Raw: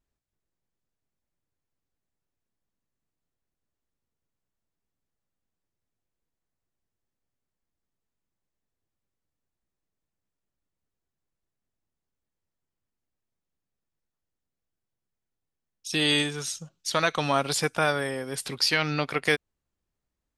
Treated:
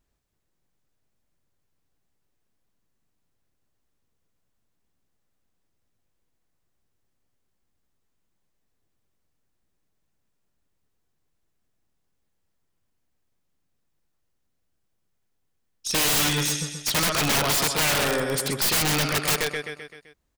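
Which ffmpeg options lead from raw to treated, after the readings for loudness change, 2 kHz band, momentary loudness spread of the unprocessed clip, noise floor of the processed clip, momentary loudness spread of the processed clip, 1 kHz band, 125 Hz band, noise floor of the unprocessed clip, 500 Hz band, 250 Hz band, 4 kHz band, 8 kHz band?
+4.0 dB, +1.5 dB, 10 LU, −74 dBFS, 8 LU, +1.5 dB, +4.0 dB, below −85 dBFS, +0.5 dB, +1.5 dB, +3.5 dB, +10.0 dB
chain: -af "aecho=1:1:129|258|387|516|645|774:0.398|0.203|0.104|0.0528|0.0269|0.0137,aeval=exprs='0.447*(cos(1*acos(clip(val(0)/0.447,-1,1)))-cos(1*PI/2))+0.1*(cos(2*acos(clip(val(0)/0.447,-1,1)))-cos(2*PI/2))+0.00282*(cos(3*acos(clip(val(0)/0.447,-1,1)))-cos(3*PI/2))+0.178*(cos(7*acos(clip(val(0)/0.447,-1,1)))-cos(7*PI/2))+0.0355*(cos(8*acos(clip(val(0)/0.447,-1,1)))-cos(8*PI/2))':channel_layout=same,aeval=exprs='(mod(9.44*val(0)+1,2)-1)/9.44':channel_layout=same,volume=2.5dB"

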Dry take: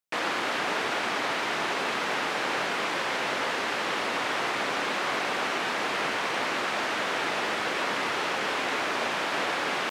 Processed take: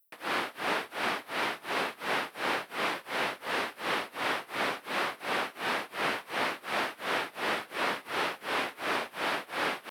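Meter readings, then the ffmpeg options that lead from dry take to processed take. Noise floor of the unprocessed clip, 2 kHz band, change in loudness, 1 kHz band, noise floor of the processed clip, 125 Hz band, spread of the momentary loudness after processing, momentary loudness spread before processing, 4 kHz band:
−30 dBFS, −4.5 dB, −4.5 dB, −4.0 dB, −55 dBFS, −4.5 dB, 1 LU, 0 LU, −5.0 dB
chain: -filter_complex "[0:a]tremolo=f=2.8:d=0.96,aexciter=amount=13.7:drive=3.2:freq=9500,acrossover=split=6500[link_01][link_02];[link_02]acompressor=threshold=-57dB:ratio=4:attack=1:release=60[link_03];[link_01][link_03]amix=inputs=2:normalize=0"

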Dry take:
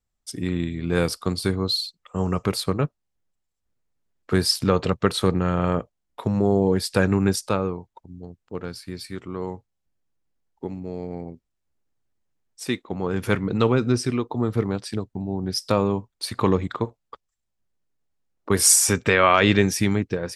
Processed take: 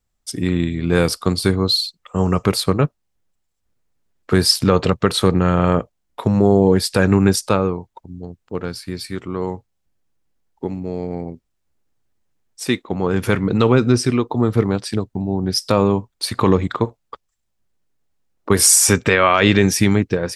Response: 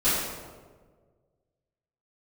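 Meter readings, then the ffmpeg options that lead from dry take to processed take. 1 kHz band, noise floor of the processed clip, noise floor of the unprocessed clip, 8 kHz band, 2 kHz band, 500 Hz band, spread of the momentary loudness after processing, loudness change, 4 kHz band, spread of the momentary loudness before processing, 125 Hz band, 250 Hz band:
+4.0 dB, −72 dBFS, −78 dBFS, +4.5 dB, +4.0 dB, +5.5 dB, 15 LU, +5.0 dB, +6.0 dB, 17 LU, +6.0 dB, +6.0 dB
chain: -af "alimiter=level_in=7.5dB:limit=-1dB:release=50:level=0:latency=1,volume=-1dB"

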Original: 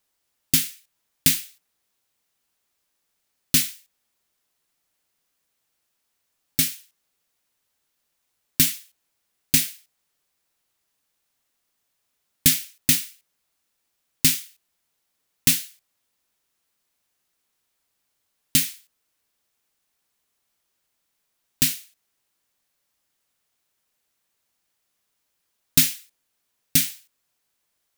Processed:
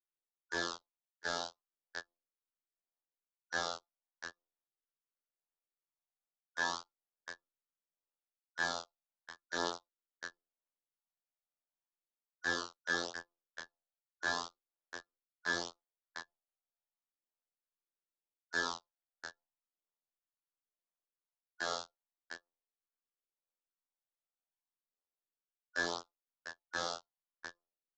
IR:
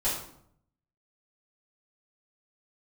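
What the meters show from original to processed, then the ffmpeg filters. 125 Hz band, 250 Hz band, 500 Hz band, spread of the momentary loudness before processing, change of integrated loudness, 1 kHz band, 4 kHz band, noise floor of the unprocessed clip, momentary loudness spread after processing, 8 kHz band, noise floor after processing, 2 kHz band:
−25.0 dB, −17.5 dB, +5.5 dB, 11 LU, −19.0 dB, can't be measured, −15.0 dB, −76 dBFS, 15 LU, −24.0 dB, below −85 dBFS, −2.5 dB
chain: -filter_complex "[0:a]afftfilt=real='real(if(lt(b,272),68*(eq(floor(b/68),0)*3+eq(floor(b/68),1)*0+eq(floor(b/68),2)*1+eq(floor(b/68),3)*2)+mod(b,68),b),0)':imag='imag(if(lt(b,272),68*(eq(floor(b/68),0)*3+eq(floor(b/68),1)*0+eq(floor(b/68),2)*1+eq(floor(b/68),3)*2)+mod(b,68),b),0)':win_size=2048:overlap=0.75,acrossover=split=130|380|2300[link_01][link_02][link_03][link_04];[link_02]acompressor=threshold=-38dB:ratio=4[link_05];[link_03]acompressor=threshold=-32dB:ratio=4[link_06];[link_04]acompressor=threshold=-27dB:ratio=4[link_07];[link_01][link_05][link_06][link_07]amix=inputs=4:normalize=0,afftfilt=real='hypot(re,im)*cos(PI*b)':imag='0':win_size=2048:overlap=0.75,acrossover=split=320 5400:gain=0.0794 1 0.112[link_08][link_09][link_10];[link_08][link_09][link_10]amix=inputs=3:normalize=0,aecho=1:1:697:0.0631,anlmdn=0.000158,areverse,acompressor=threshold=-47dB:ratio=6,areverse,asoftclip=type=hard:threshold=-38dB,aresample=16000,aresample=44100,flanger=delay=22.5:depth=2.2:speed=0.39,volume=17.5dB"

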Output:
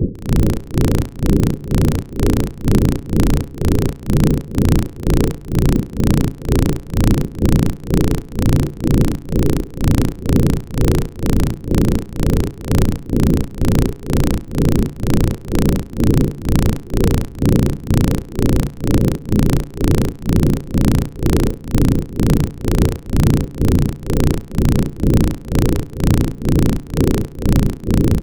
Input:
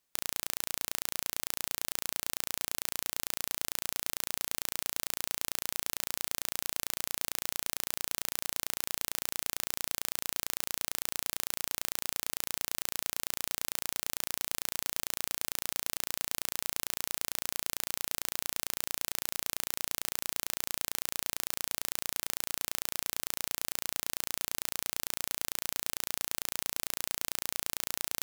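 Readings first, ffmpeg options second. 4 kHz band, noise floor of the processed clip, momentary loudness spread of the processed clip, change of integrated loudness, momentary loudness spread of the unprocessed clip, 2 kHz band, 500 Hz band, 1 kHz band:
+4.0 dB, −34 dBFS, 3 LU, +16.0 dB, 0 LU, +7.5 dB, +27.0 dB, +13.0 dB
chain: -filter_complex "[0:a]aeval=exprs='val(0)+0.5*0.0376*sgn(val(0))':channel_layout=same,lowpass=frequency=9600:width=0.5412,lowpass=frequency=9600:width=1.3066,aphaser=in_gain=1:out_gain=1:delay=2.5:decay=0.25:speed=0.68:type=sinusoidal,highshelf=frequency=2800:gain=-12,bandreject=frequency=60:width_type=h:width=6,bandreject=frequency=120:width_type=h:width=6,bandreject=frequency=180:width_type=h:width=6,bandreject=frequency=240:width_type=h:width=6,bandreject=frequency=300:width_type=h:width=6,bandreject=frequency=360:width_type=h:width=6,bandreject=frequency=420:width_type=h:width=6,bandreject=frequency=480:width_type=h:width=6,bandreject=frequency=540:width_type=h:width=6,afftfilt=real='re*(1-between(b*sr/4096,570,2400))':imag='im*(1-between(b*sr/4096,570,2400))':win_size=4096:overlap=0.75,acrossover=split=420[link_01][link_02];[link_02]aeval=exprs='val(0)*gte(abs(val(0)),0.0531)':channel_layout=same[link_03];[link_01][link_03]amix=inputs=2:normalize=0,tremolo=f=2.1:d=0.91,agate=range=-6dB:threshold=-57dB:ratio=16:detection=peak,tiltshelf=frequency=1100:gain=9.5,asplit=2[link_04][link_05];[link_05]adelay=62,lowpass=frequency=2700:poles=1,volume=-21dB,asplit=2[link_06][link_07];[link_07]adelay=62,lowpass=frequency=2700:poles=1,volume=0.49,asplit=2[link_08][link_09];[link_09]adelay=62,lowpass=frequency=2700:poles=1,volume=0.49,asplit=2[link_10][link_11];[link_11]adelay=62,lowpass=frequency=2700:poles=1,volume=0.49[link_12];[link_06][link_08][link_10][link_12]amix=inputs=4:normalize=0[link_13];[link_04][link_13]amix=inputs=2:normalize=0,alimiter=level_in=33dB:limit=-1dB:release=50:level=0:latency=1,volume=-1dB"

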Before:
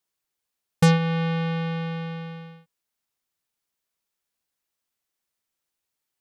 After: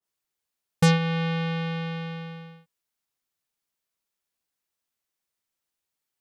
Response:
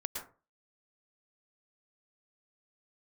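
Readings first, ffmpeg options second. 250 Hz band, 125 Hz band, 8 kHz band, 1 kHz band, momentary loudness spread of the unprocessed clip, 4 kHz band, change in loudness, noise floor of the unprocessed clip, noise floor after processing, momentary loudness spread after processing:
−2.0 dB, −2.0 dB, can't be measured, −1.5 dB, 17 LU, +1.5 dB, −1.5 dB, −84 dBFS, −85 dBFS, 17 LU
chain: -af "adynamicequalizer=threshold=0.0141:dfrequency=1600:dqfactor=0.7:tfrequency=1600:tqfactor=0.7:attack=5:release=100:ratio=0.375:range=2:mode=boostabove:tftype=highshelf,volume=-2dB"

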